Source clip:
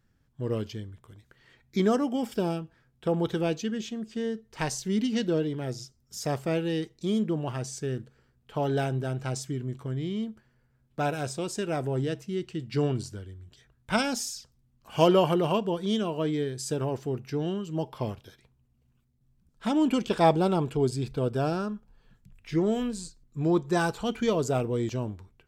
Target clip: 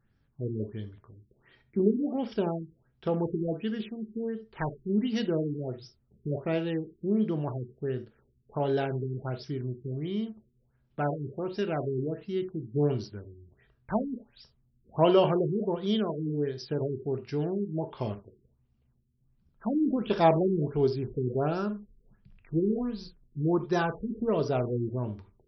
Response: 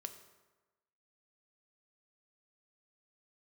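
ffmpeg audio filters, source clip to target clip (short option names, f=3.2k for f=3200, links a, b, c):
-filter_complex "[1:a]atrim=start_sample=2205,atrim=end_sample=3969[a];[0:a][a]afir=irnorm=-1:irlink=0,afftfilt=real='re*lt(b*sr/1024,420*pow(6000/420,0.5+0.5*sin(2*PI*1.4*pts/sr)))':imag='im*lt(b*sr/1024,420*pow(6000/420,0.5+0.5*sin(2*PI*1.4*pts/sr)))':win_size=1024:overlap=0.75,volume=2.5dB"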